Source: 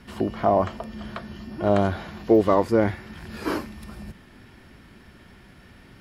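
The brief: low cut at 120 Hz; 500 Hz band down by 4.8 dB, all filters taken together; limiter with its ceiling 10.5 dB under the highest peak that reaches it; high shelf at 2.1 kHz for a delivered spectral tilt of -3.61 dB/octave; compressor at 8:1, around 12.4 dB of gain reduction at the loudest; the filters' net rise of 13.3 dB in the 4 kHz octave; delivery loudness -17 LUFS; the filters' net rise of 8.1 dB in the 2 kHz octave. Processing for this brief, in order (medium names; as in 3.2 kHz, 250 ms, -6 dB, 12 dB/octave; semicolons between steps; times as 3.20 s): high-pass 120 Hz; peaking EQ 500 Hz -7.5 dB; peaking EQ 2 kHz +5 dB; treble shelf 2.1 kHz +8.5 dB; peaking EQ 4 kHz +7.5 dB; compression 8:1, threshold -29 dBFS; trim +20 dB; peak limiter -3.5 dBFS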